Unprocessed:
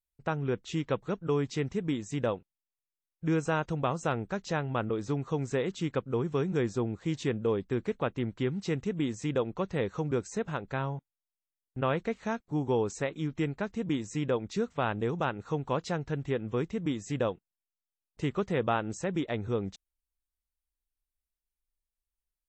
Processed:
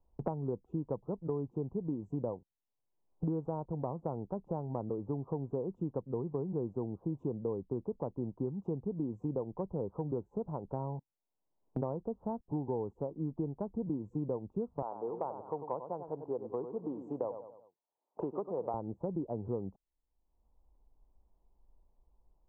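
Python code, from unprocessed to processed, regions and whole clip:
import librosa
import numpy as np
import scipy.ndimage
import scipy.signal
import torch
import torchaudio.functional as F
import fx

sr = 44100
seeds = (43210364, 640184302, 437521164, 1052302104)

y = fx.chain(x, sr, fx.highpass(hz=540.0, slope=12),
    fx.echo_feedback(ms=95, feedback_pct=34, wet_db=-10), at=(14.82, 18.74))
y = scipy.signal.sosfilt(scipy.signal.ellip(4, 1.0, 50, 960.0, 'lowpass', fs=sr, output='sos'), y)
y = fx.band_squash(y, sr, depth_pct=100)
y = y * 10.0 ** (-5.5 / 20.0)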